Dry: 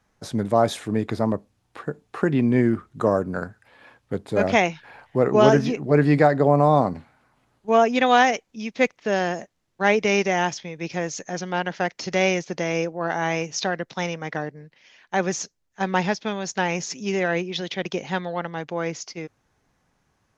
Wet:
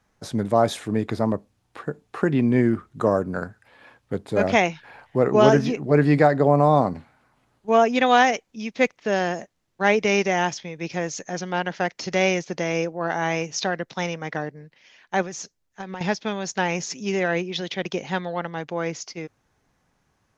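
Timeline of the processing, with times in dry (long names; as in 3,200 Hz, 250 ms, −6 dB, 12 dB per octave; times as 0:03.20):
0:15.22–0:16.01: downward compressor, threshold −30 dBFS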